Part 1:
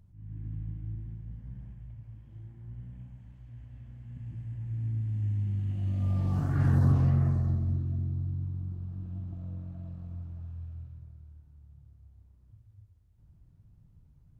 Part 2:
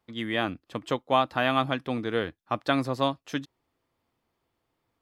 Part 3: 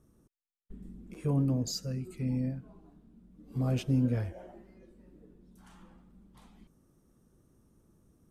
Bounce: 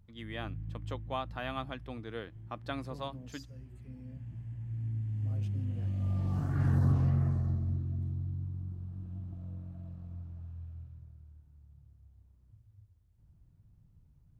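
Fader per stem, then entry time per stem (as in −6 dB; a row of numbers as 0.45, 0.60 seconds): −3.5, −13.5, −18.0 decibels; 0.00, 0.00, 1.65 seconds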